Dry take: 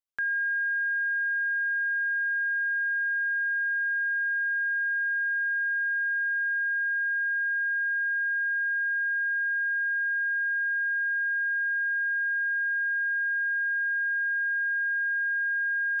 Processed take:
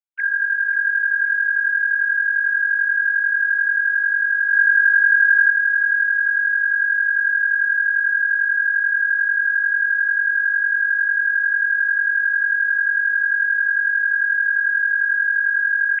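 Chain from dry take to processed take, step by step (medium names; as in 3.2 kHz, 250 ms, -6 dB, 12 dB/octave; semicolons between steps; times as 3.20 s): formants replaced by sine waves; 4.52–5.50 s: dynamic bell 1.6 kHz, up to +5 dB, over -36 dBFS, Q 0.86; feedback delay 536 ms, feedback 56%, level -13 dB; trim +7.5 dB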